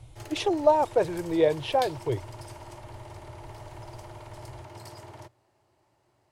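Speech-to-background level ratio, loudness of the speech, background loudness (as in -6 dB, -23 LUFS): 18.5 dB, -26.0 LUFS, -44.5 LUFS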